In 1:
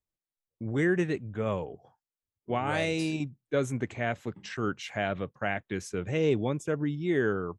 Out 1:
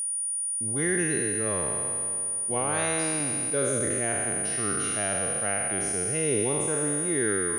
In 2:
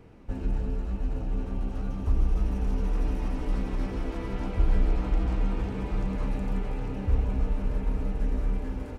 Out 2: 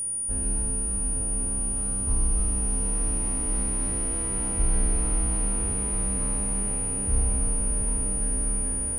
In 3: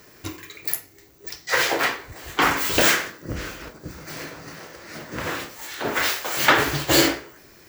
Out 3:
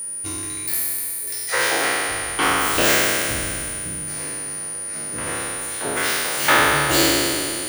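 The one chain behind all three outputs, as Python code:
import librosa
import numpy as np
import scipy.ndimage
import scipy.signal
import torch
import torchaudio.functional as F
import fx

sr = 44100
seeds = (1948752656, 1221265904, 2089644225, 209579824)

y = fx.spec_trails(x, sr, decay_s=2.58)
y = y + 10.0 ** (-23.0 / 20.0) * np.sin(2.0 * np.pi * 9500.0 * np.arange(len(y)) / sr)
y = y * librosa.db_to_amplitude(-4.0)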